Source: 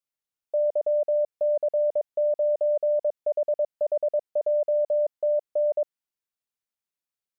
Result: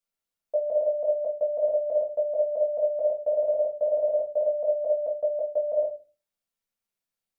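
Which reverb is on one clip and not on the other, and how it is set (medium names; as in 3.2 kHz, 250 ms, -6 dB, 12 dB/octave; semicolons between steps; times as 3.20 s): simulated room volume 130 m³, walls furnished, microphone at 1.7 m; trim -1 dB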